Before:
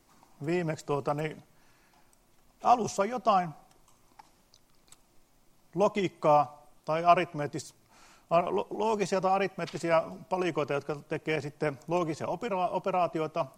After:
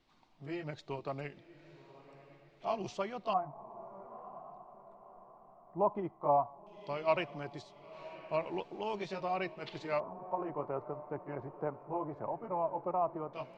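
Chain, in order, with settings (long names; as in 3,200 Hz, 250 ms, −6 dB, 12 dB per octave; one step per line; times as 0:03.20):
pitch shifter swept by a sawtooth −1.5 semitones, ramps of 1,434 ms
feedback delay with all-pass diffusion 1,025 ms, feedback 42%, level −15.5 dB
auto-filter low-pass square 0.15 Hz 970–3,600 Hz
level −8.5 dB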